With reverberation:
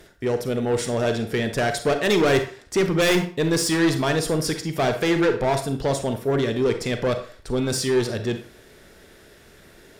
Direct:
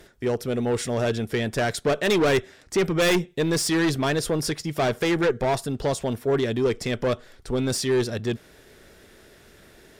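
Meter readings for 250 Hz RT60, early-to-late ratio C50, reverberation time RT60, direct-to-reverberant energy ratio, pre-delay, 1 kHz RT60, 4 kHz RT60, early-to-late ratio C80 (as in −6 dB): 0.40 s, 9.0 dB, 0.45 s, 7.0 dB, 34 ms, 0.45 s, 0.35 s, 14.0 dB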